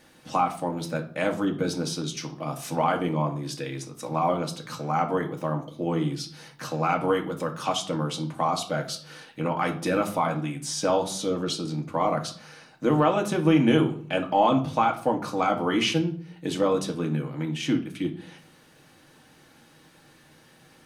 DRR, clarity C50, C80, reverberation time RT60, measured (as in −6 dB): 1.5 dB, 12.5 dB, 17.0 dB, 0.50 s